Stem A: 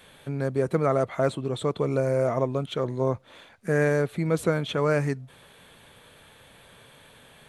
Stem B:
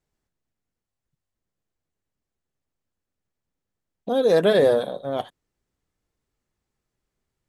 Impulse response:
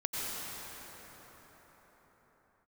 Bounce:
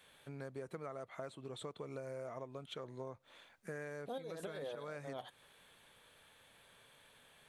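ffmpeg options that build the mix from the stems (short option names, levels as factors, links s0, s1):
-filter_complex "[0:a]volume=0.299,asplit=2[s0][s1];[1:a]alimiter=limit=0.158:level=0:latency=1:release=96,volume=1.41[s2];[s1]apad=whole_len=330191[s3];[s2][s3]sidechaincompress=threshold=0.00251:ratio=3:attack=16:release=105[s4];[s0][s4]amix=inputs=2:normalize=0,lowshelf=f=460:g=-8,acompressor=threshold=0.00794:ratio=6"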